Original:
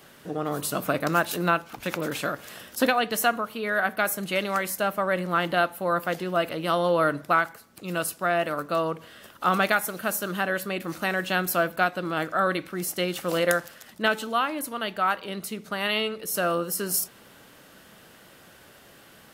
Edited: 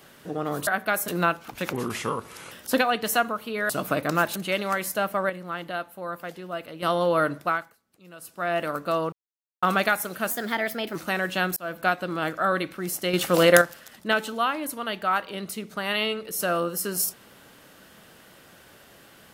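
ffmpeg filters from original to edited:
ffmpeg -i in.wav -filter_complex "[0:a]asplit=18[link_01][link_02][link_03][link_04][link_05][link_06][link_07][link_08][link_09][link_10][link_11][link_12][link_13][link_14][link_15][link_16][link_17][link_18];[link_01]atrim=end=0.672[link_19];[link_02]atrim=start=3.778:end=4.192[link_20];[link_03]atrim=start=1.328:end=1.984[link_21];[link_04]atrim=start=1.98:end=2.6,asetpts=PTS-STARTPTS,asetrate=34839,aresample=44100,atrim=end_sample=34610,asetpts=PTS-STARTPTS[link_22];[link_05]atrim=start=2.596:end=3.782[link_23];[link_06]atrim=start=0.668:end=1.332[link_24];[link_07]atrim=start=4.188:end=5.132[link_25];[link_08]atrim=start=5.128:end=6.662,asetpts=PTS-STARTPTS,volume=-8.5dB[link_26];[link_09]atrim=start=6.658:end=7.61,asetpts=PTS-STARTPTS,afade=type=out:start_time=0.522:duration=0.43:silence=0.133352[link_27];[link_10]atrim=start=7.61:end=8.02,asetpts=PTS-STARTPTS,volume=-17.5dB[link_28];[link_11]atrim=start=8.02:end=8.96,asetpts=PTS-STARTPTS,afade=type=in:duration=0.43:silence=0.133352,afade=type=out:start_time=0.936:duration=0.004:curve=hsin[link_29];[link_12]atrim=start=8.96:end=9.46,asetpts=PTS-STARTPTS,volume=0[link_30];[link_13]atrim=start=9.46:end=10.144,asetpts=PTS-STARTPTS,afade=type=in:duration=0.004:curve=hsin[link_31];[link_14]atrim=start=10.14:end=10.9,asetpts=PTS-STARTPTS,asetrate=51597,aresample=44100,atrim=end_sample=28646,asetpts=PTS-STARTPTS[link_32];[link_15]atrim=start=10.896:end=11.51,asetpts=PTS-STARTPTS,afade=type=out:start_time=0.61:duration=0.004:curve=hsin[link_33];[link_16]atrim=start=11.51:end=13.082,asetpts=PTS-STARTPTS,afade=type=in:duration=0.29[link_34];[link_17]atrim=start=13.078:end=13.562,asetpts=PTS-STARTPTS,volume=7dB[link_35];[link_18]atrim=start=13.558[link_36];[link_19][link_20]acrossfade=duration=0.004:curve1=hsin:curve2=hsin[link_37];[link_37][link_21]acrossfade=duration=0.004:curve1=hsin:curve2=hsin[link_38];[link_38][link_22]acrossfade=duration=0.004:curve1=hsin:curve2=hsin[link_39];[link_39][link_23]acrossfade=duration=0.004:curve1=hsin:curve2=hsin[link_40];[link_40][link_24]acrossfade=duration=0.004:curve1=hsin:curve2=hsin[link_41];[link_41][link_25]acrossfade=duration=0.004:curve1=hsin:curve2=hsin[link_42];[link_42][link_26]acrossfade=duration=0.004:curve1=hsin:curve2=hsin[link_43];[link_27][link_28][link_29][link_30][link_31]concat=n=5:v=0:a=1[link_44];[link_43][link_44]acrossfade=duration=0.004:curve1=hsin:curve2=hsin[link_45];[link_45][link_32]acrossfade=duration=0.004:curve1=hsin:curve2=hsin[link_46];[link_33][link_34]concat=n=2:v=0:a=1[link_47];[link_46][link_47]acrossfade=duration=0.004:curve1=hsin:curve2=hsin[link_48];[link_48][link_35]acrossfade=duration=0.004:curve1=hsin:curve2=hsin[link_49];[link_49][link_36]acrossfade=duration=0.004:curve1=hsin:curve2=hsin" out.wav

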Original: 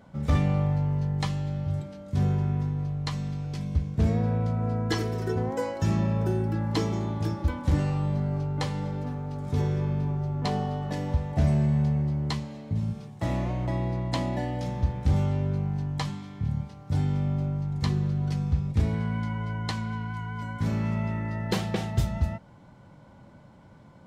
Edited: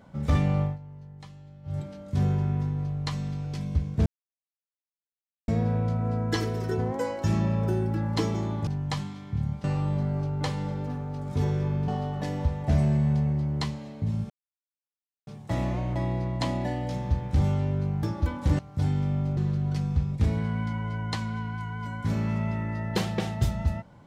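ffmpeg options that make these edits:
ffmpeg -i in.wav -filter_complex "[0:a]asplit=11[link_01][link_02][link_03][link_04][link_05][link_06][link_07][link_08][link_09][link_10][link_11];[link_01]atrim=end=0.78,asetpts=PTS-STARTPTS,afade=type=out:start_time=0.62:duration=0.16:silence=0.133352[link_12];[link_02]atrim=start=0.78:end=1.63,asetpts=PTS-STARTPTS,volume=-17.5dB[link_13];[link_03]atrim=start=1.63:end=4.06,asetpts=PTS-STARTPTS,afade=type=in:duration=0.16:silence=0.133352,afade=type=out:start_time=2.426:duration=0.004:curve=hsin,apad=pad_dur=1.42[link_14];[link_04]atrim=start=4.06:end=7.252,asetpts=PTS-STARTPTS,afade=type=in:duration=0.004:curve=hsin[link_15];[link_05]atrim=start=15.748:end=16.722[link_16];[link_06]atrim=start=7.808:end=10.052[link_17];[link_07]atrim=start=10.568:end=12.99,asetpts=PTS-STARTPTS,afade=type=out:start_time=2.418:duration=0.004:curve=hsin,apad=pad_dur=0.97[link_18];[link_08]atrim=start=12.99:end=15.752,asetpts=PTS-STARTPTS,afade=type=in:duration=0.004:curve=hsin[link_19];[link_09]atrim=start=7.248:end=7.812[link_20];[link_10]atrim=start=16.718:end=17.502[link_21];[link_11]atrim=start=17.928[link_22];[link_12][link_13][link_14][link_15]concat=n=4:v=0:a=1[link_23];[link_23][link_16]acrossfade=duration=0.004:curve1=hsin:curve2=hsin[link_24];[link_24][link_17]acrossfade=duration=0.004:curve1=hsin:curve2=hsin[link_25];[link_18][link_19]concat=n=2:v=0:a=1[link_26];[link_25][link_26]acrossfade=duration=0.004:curve1=hsin:curve2=hsin[link_27];[link_27][link_20]acrossfade=duration=0.004:curve1=hsin:curve2=hsin[link_28];[link_28][link_21]acrossfade=duration=0.004:curve1=hsin:curve2=hsin[link_29];[link_29][link_22]acrossfade=duration=0.004:curve1=hsin:curve2=hsin" out.wav

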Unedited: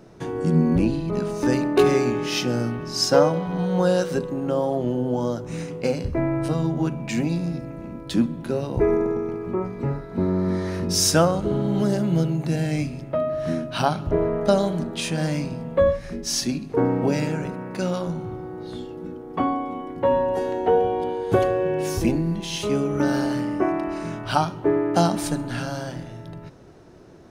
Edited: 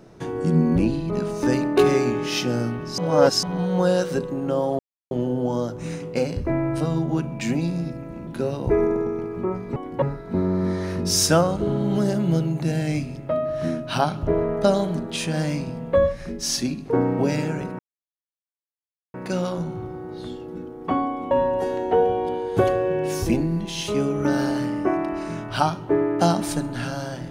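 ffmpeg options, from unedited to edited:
ffmpeg -i in.wav -filter_complex "[0:a]asplit=9[link_01][link_02][link_03][link_04][link_05][link_06][link_07][link_08][link_09];[link_01]atrim=end=2.982[link_10];[link_02]atrim=start=2.978:end=3.432,asetpts=PTS-STARTPTS,areverse[link_11];[link_03]atrim=start=3.428:end=4.79,asetpts=PTS-STARTPTS,afade=type=out:start_time=1.358:duration=0.004:curve=hsin,apad=pad_dur=0.32[link_12];[link_04]atrim=start=4.79:end=7.952,asetpts=PTS-STARTPTS,afade=type=in:duration=0.004:curve=hsin[link_13];[link_05]atrim=start=8.368:end=9.862[link_14];[link_06]atrim=start=19.798:end=20.062[link_15];[link_07]atrim=start=9.858:end=17.63,asetpts=PTS-STARTPTS,afade=type=out:start_time=7.768:duration=0.004:curve=hsin,apad=pad_dur=1.35[link_16];[link_08]atrim=start=17.63:end=19.802,asetpts=PTS-STARTPTS,afade=type=in:duration=0.004:curve=hsin[link_17];[link_09]atrim=start=20.058[link_18];[link_10][link_11]acrossfade=duration=0.004:curve1=hsin:curve2=hsin[link_19];[link_12][link_13]concat=n=2:v=0:a=1[link_20];[link_19][link_20]acrossfade=duration=0.004:curve1=hsin:curve2=hsin[link_21];[link_21][link_14]acrossfade=duration=0.004:curve1=hsin:curve2=hsin[link_22];[link_22][link_15]acrossfade=duration=0.004:curve1=hsin:curve2=hsin[link_23];[link_16][link_17]concat=n=2:v=0:a=1[link_24];[link_23][link_24]acrossfade=duration=0.004:curve1=hsin:curve2=hsin[link_25];[link_25][link_18]acrossfade=duration=0.004:curve1=hsin:curve2=hsin" out.wav

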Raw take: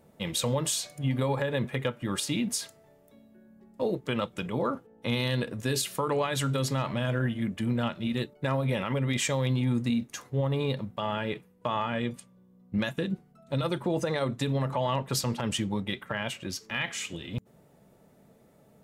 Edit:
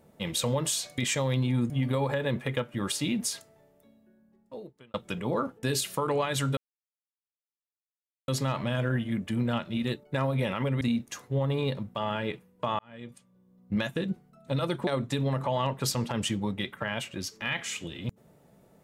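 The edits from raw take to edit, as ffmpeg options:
ffmpeg -i in.wav -filter_complex "[0:a]asplit=9[link_01][link_02][link_03][link_04][link_05][link_06][link_07][link_08][link_09];[link_01]atrim=end=0.982[link_10];[link_02]atrim=start=9.108:end=9.832[link_11];[link_03]atrim=start=0.978:end=4.22,asetpts=PTS-STARTPTS,afade=type=out:start_time=1.612:duration=1.63[link_12];[link_04]atrim=start=4.22:end=4.912,asetpts=PTS-STARTPTS,afade=type=in:duration=0.004:curve=hsin[link_13];[link_05]atrim=start=5.638:end=6.58,asetpts=PTS-STARTPTS,afade=type=out:start_time=0.938:duration=0.004:curve=hsin,apad=pad_dur=1.71[link_14];[link_06]atrim=start=6.58:end=9.112,asetpts=PTS-STARTPTS,afade=type=in:duration=0.004:curve=hsin[link_15];[link_07]atrim=start=9.828:end=11.81,asetpts=PTS-STARTPTS,afade=type=out:start_time=1.978:duration=0.004:curve=hsin[link_16];[link_08]atrim=start=11.81:end=13.892,asetpts=PTS-STARTPTS,afade=type=in:duration=0.95[link_17];[link_09]atrim=start=14.158[link_18];[link_10][link_11]acrossfade=duration=0.004:curve1=hsin:curve2=hsin[link_19];[link_12][link_13]concat=n=2:v=0:a=1[link_20];[link_19][link_20]acrossfade=duration=0.004:curve1=hsin:curve2=hsin[link_21];[link_14][link_15]concat=n=2:v=0:a=1[link_22];[link_21][link_22]acrossfade=duration=0.004:curve1=hsin:curve2=hsin[link_23];[link_16][link_17]concat=n=2:v=0:a=1[link_24];[link_23][link_24]acrossfade=duration=0.004:curve1=hsin:curve2=hsin[link_25];[link_25][link_18]acrossfade=duration=0.004:curve1=hsin:curve2=hsin" out.wav

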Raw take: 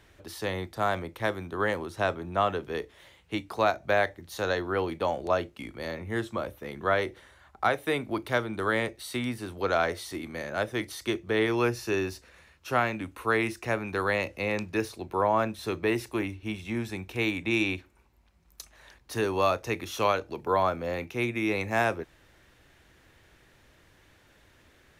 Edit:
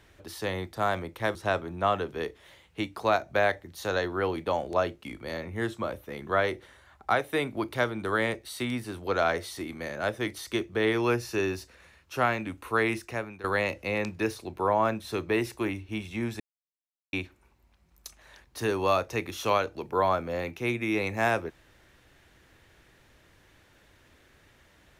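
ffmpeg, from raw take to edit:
ffmpeg -i in.wav -filter_complex "[0:a]asplit=5[link_01][link_02][link_03][link_04][link_05];[link_01]atrim=end=1.352[link_06];[link_02]atrim=start=1.888:end=13.98,asetpts=PTS-STARTPTS,afade=type=out:start_time=11.612:duration=0.48:silence=0.16788[link_07];[link_03]atrim=start=13.98:end=16.94,asetpts=PTS-STARTPTS,afade=type=in:duration=0.004:curve=hsin:silence=0.16788,afade=type=out:start_time=2.956:duration=0.004:curve=hsin[link_08];[link_04]atrim=start=16.94:end=17.67,asetpts=PTS-STARTPTS,volume=0[link_09];[link_05]atrim=start=17.67,asetpts=PTS-STARTPTS,afade=type=in:duration=0.004:curve=hsin[link_10];[link_07][link_08][link_09][link_10]concat=n=4:v=0:a=1[link_11];[link_06][link_11]acrossfade=duration=0.004:curve1=hsin:curve2=hsin" out.wav

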